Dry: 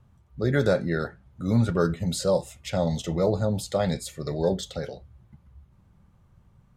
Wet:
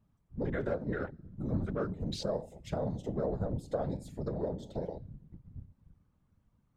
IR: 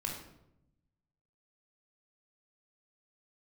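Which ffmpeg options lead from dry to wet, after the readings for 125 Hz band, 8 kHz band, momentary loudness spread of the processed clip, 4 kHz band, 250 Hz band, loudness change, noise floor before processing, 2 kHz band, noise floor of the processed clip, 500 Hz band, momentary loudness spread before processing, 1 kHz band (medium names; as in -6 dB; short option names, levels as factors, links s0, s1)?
-10.0 dB, -18.0 dB, 15 LU, -12.0 dB, -9.5 dB, -10.0 dB, -60 dBFS, -11.5 dB, -73 dBFS, -10.0 dB, 11 LU, -9.5 dB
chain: -filter_complex "[0:a]asplit=2[s0][s1];[1:a]atrim=start_sample=2205[s2];[s1][s2]afir=irnorm=-1:irlink=0,volume=0.158[s3];[s0][s3]amix=inputs=2:normalize=0,afwtdn=0.02,acompressor=threshold=0.0141:ratio=3,afftfilt=real='hypot(re,im)*cos(2*PI*random(0))':imag='hypot(re,im)*sin(2*PI*random(1))':win_size=512:overlap=0.75,volume=2.51"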